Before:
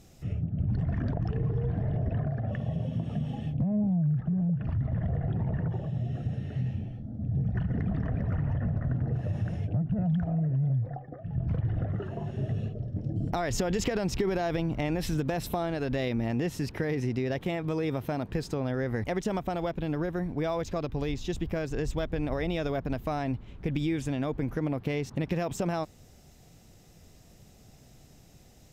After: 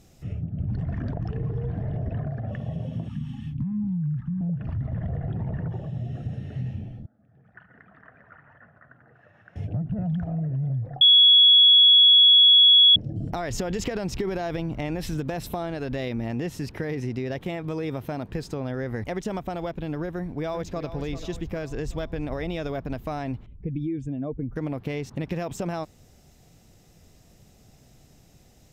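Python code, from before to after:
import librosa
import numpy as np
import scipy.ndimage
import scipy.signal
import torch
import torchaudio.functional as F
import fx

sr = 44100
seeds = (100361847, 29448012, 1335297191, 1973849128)

y = fx.ellip_bandstop(x, sr, low_hz=270.0, high_hz=950.0, order=3, stop_db=40, at=(3.08, 4.41))
y = fx.bandpass_q(y, sr, hz=1500.0, q=2.9, at=(7.06, 9.56))
y = fx.echo_throw(y, sr, start_s=20.13, length_s=0.76, ms=390, feedback_pct=55, wet_db=-11.5)
y = fx.spec_expand(y, sr, power=1.7, at=(23.46, 24.56))
y = fx.edit(y, sr, fx.bleep(start_s=11.01, length_s=1.95, hz=3360.0, db=-11.0), tone=tone)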